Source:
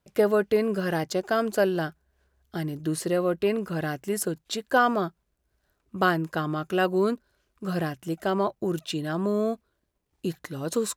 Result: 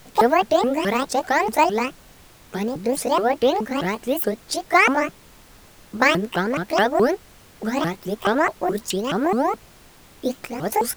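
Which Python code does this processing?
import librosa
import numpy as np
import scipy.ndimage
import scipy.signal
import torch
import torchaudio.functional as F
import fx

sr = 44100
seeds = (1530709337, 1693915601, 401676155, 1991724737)

y = fx.pitch_ramps(x, sr, semitones=12.0, every_ms=212)
y = fx.dmg_noise_colour(y, sr, seeds[0], colour='pink', level_db=-55.0)
y = F.gain(torch.from_numpy(y), 6.5).numpy()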